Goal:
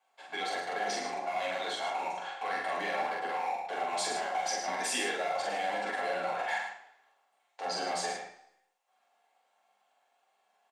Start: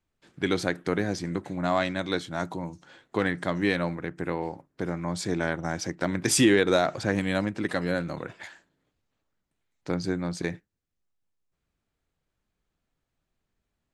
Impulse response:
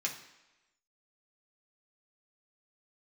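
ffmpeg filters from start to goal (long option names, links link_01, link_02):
-filter_complex "[0:a]highpass=frequency=740:width_type=q:width=7.9,areverse,acompressor=threshold=-30dB:ratio=8,areverse,alimiter=level_in=5.5dB:limit=-24dB:level=0:latency=1:release=37,volume=-5.5dB,atempo=1.3,highshelf=frequency=3300:gain=-5.5,acrossover=split=4200[link_01][link_02];[link_01]volume=35.5dB,asoftclip=hard,volume=-35.5dB[link_03];[link_03][link_02]amix=inputs=2:normalize=0,asplit=2[link_04][link_05];[link_05]adelay=44,volume=-2dB[link_06];[link_04][link_06]amix=inputs=2:normalize=0,aecho=1:1:107:0.422[link_07];[1:a]atrim=start_sample=2205,asetrate=57330,aresample=44100[link_08];[link_07][link_08]afir=irnorm=-1:irlink=0,volume=8dB"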